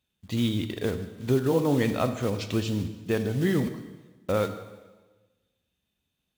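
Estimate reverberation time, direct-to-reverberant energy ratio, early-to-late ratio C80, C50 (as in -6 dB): 1.3 s, 9.0 dB, 12.0 dB, 10.5 dB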